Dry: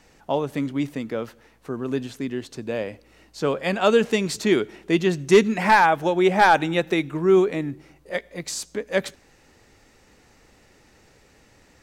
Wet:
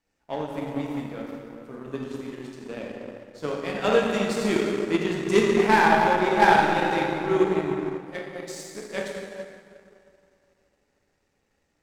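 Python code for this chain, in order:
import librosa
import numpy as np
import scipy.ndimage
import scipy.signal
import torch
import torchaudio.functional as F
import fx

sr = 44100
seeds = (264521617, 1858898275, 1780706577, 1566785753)

y = fx.hum_notches(x, sr, base_hz=60, count=2)
y = fx.rev_plate(y, sr, seeds[0], rt60_s=3.5, hf_ratio=0.55, predelay_ms=0, drr_db=-4.5)
y = fx.power_curve(y, sr, exponent=1.4)
y = F.gain(torch.from_numpy(y), -4.0).numpy()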